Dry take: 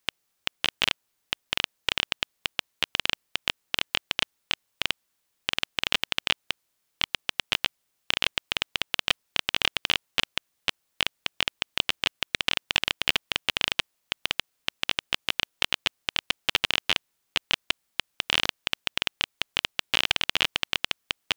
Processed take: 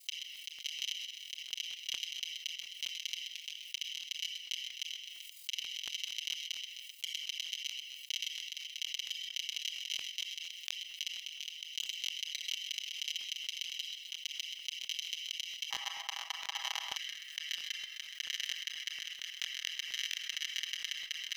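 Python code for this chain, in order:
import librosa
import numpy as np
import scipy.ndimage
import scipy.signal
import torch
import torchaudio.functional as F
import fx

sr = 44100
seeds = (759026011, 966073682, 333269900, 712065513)

y = fx.lower_of_two(x, sr, delay_ms=1.0)
y = y * np.sin(2.0 * np.pi * 21.0 * np.arange(len(y)) / sr)
y = y + 0.85 * np.pad(y, (int(6.2 * sr / 1000.0), 0))[:len(y)]
y = fx.echo_feedback(y, sr, ms=129, feedback_pct=36, wet_db=-17.0)
y = fx.room_shoebox(y, sr, seeds[0], volume_m3=3600.0, walls='furnished', distance_m=1.3)
y = fx.level_steps(y, sr, step_db=15)
y = fx.steep_highpass(y, sr, hz=fx.steps((0.0, 2300.0), (15.7, 730.0), (16.95, 1600.0)), slope=48)
y = fx.buffer_crackle(y, sr, first_s=0.31, period_s=0.23, block=1024, kind='repeat')
y = fx.env_flatten(y, sr, amount_pct=70)
y = y * librosa.db_to_amplitude(-7.5)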